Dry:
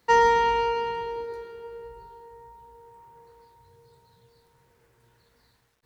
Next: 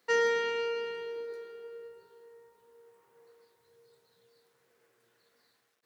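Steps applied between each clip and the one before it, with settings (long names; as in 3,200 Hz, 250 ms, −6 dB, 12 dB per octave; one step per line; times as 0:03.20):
high-pass filter 300 Hz 12 dB per octave
notch filter 920 Hz, Q 6.7
level −4 dB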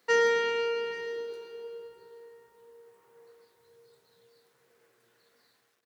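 single-tap delay 828 ms −19 dB
level +3 dB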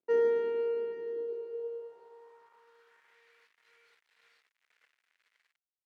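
bit reduction 10 bits
band-pass filter sweep 330 Hz → 2,000 Hz, 0:01.14–0:03.17
level +5 dB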